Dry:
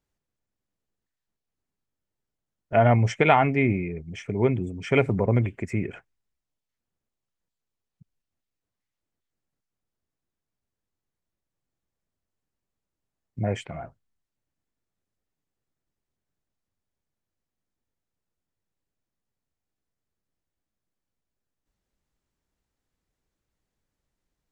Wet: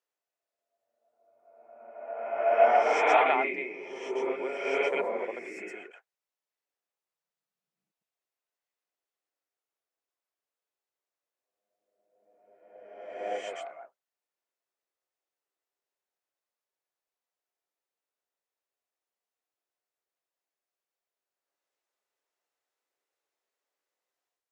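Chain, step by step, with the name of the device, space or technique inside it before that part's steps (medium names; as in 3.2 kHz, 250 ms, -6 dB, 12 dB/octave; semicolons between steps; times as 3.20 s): ghost voice (reverse; reverberation RT60 1.7 s, pre-delay 108 ms, DRR -7 dB; reverse; high-pass 450 Hz 24 dB/octave); trim -8.5 dB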